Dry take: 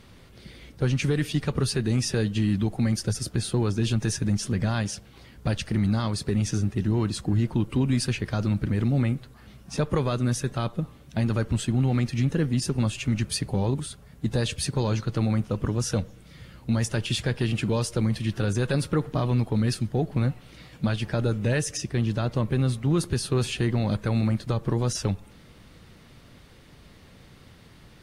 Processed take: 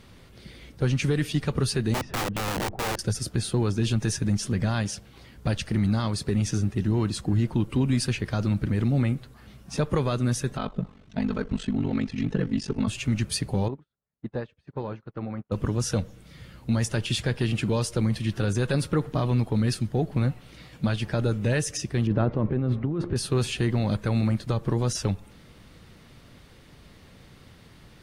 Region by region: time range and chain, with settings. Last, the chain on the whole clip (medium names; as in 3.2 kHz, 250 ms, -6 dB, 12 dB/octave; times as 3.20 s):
1.94–2.99 s: low-pass 1.3 kHz + integer overflow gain 23 dB
10.57–12.88 s: comb 4.6 ms, depth 73% + ring modulator 24 Hz + distance through air 110 m
13.68–15.52 s: low-pass 1.7 kHz + bass shelf 170 Hz -11.5 dB + upward expansion 2.5:1, over -50 dBFS
22.07–23.16 s: low-pass 1.8 kHz + peaking EQ 340 Hz +5.5 dB 1.7 oct + compressor with a negative ratio -24 dBFS
whole clip: none